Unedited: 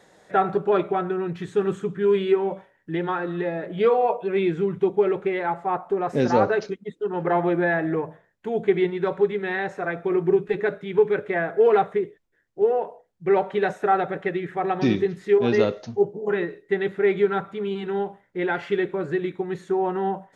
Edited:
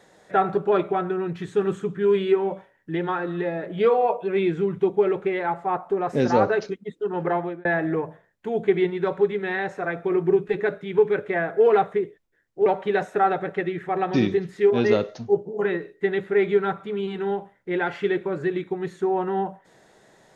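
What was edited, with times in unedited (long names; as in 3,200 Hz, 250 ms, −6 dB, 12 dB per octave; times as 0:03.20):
0:07.24–0:07.65: fade out linear
0:12.66–0:13.34: remove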